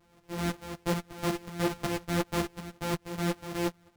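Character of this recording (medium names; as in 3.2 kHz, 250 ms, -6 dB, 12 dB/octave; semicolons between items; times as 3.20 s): a buzz of ramps at a fixed pitch in blocks of 256 samples; tremolo saw up 5.4 Hz, depth 65%; a shimmering, thickened sound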